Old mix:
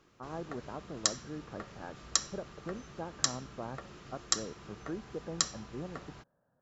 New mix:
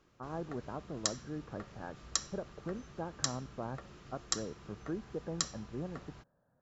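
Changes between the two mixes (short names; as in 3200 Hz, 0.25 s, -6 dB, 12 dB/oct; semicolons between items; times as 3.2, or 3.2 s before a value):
background -4.5 dB; master: add low shelf 120 Hz +6 dB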